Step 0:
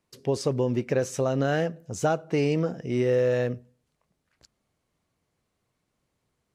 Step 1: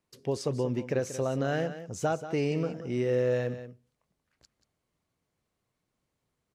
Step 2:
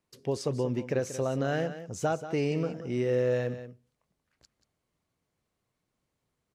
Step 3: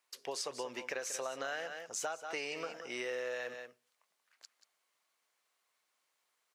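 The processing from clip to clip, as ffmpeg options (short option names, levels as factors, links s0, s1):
-af "aecho=1:1:184:0.251,volume=0.596"
-af anull
-af "highpass=990,acompressor=threshold=0.00891:ratio=10,volume=2"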